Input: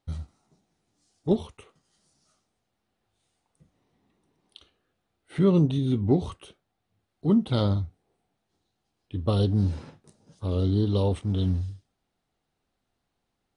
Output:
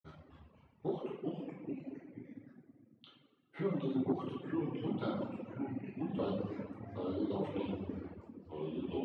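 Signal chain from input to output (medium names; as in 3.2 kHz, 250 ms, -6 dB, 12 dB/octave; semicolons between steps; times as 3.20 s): expander -58 dBFS; ever faster or slower copies 342 ms, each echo -3 st, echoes 3, each echo -6 dB; bass shelf 360 Hz -9.5 dB; compression 10:1, threshold -31 dBFS, peak gain reduction 10.5 dB; flange 0.43 Hz, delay 2.1 ms, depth 6.5 ms, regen -51%; tempo 1.5×; reverberation RT60 2.2 s, pre-delay 6 ms, DRR -6.5 dB; reverb removal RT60 1.1 s; band-pass 200–2100 Hz; transformer saturation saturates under 260 Hz; trim +1 dB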